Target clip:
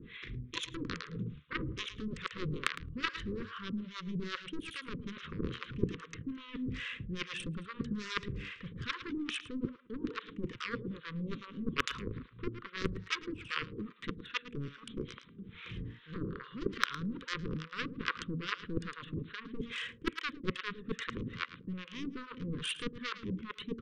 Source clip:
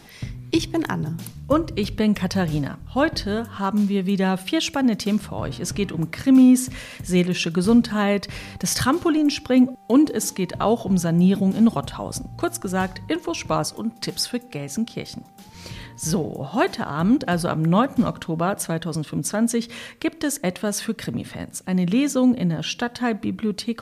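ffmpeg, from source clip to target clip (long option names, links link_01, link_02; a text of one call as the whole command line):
ffmpeg -i in.wav -filter_complex "[0:a]areverse,acompressor=threshold=-26dB:ratio=10,areverse,aresample=8000,aresample=44100,aeval=exprs='0.15*(cos(1*acos(clip(val(0)/0.15,-1,1)))-cos(1*PI/2))+0.0668*(cos(3*acos(clip(val(0)/0.15,-1,1)))-cos(3*PI/2))':channel_layout=same,asplit=2[link_01][link_02];[link_02]aecho=0:1:109|218:0.237|0.0427[link_03];[link_01][link_03]amix=inputs=2:normalize=0,acrossover=split=640[link_04][link_05];[link_04]aeval=exprs='val(0)*(1-1/2+1/2*cos(2*PI*2.4*n/s))':channel_layout=same[link_06];[link_05]aeval=exprs='val(0)*(1-1/2-1/2*cos(2*PI*2.4*n/s))':channel_layout=same[link_07];[link_06][link_07]amix=inputs=2:normalize=0,asuperstop=centerf=730:order=8:qfactor=1.2,volume=10dB" out.wav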